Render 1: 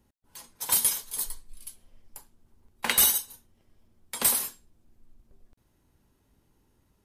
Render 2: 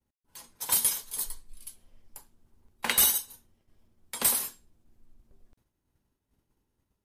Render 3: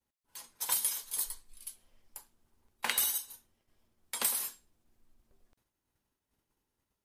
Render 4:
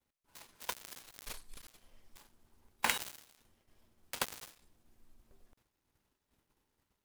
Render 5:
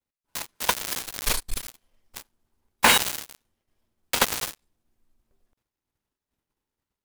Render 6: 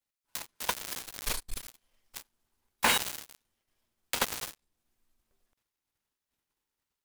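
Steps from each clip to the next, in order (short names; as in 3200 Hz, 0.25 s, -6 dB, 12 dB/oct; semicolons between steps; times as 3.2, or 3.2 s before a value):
expander -59 dBFS; gain -1.5 dB
low shelf 410 Hz -10 dB; compressor 4:1, threshold -28 dBFS, peak gain reduction 9 dB
switching dead time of 0.095 ms; gain +4.5 dB
sample leveller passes 5; gain +3.5 dB
mismatched tape noise reduction encoder only; gain -8 dB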